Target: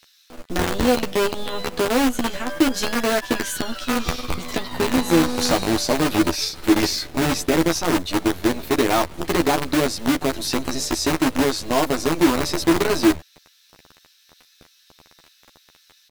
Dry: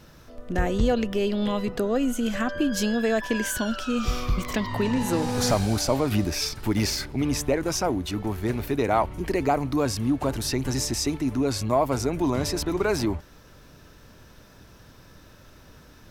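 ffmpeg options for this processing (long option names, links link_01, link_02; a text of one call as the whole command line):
ffmpeg -i in.wav -filter_complex "[0:a]equalizer=frequency=100:width_type=o:width=0.33:gain=-11,equalizer=frequency=315:width_type=o:width=0.33:gain=10,equalizer=frequency=4000:width_type=o:width=0.33:gain=8,acrossover=split=2100[link_01][link_02];[link_01]acrusher=bits=4:dc=4:mix=0:aa=0.000001[link_03];[link_03][link_02]amix=inputs=2:normalize=0,asplit=2[link_04][link_05];[link_05]adelay=12,volume=-4dB[link_06];[link_04][link_06]amix=inputs=2:normalize=0" out.wav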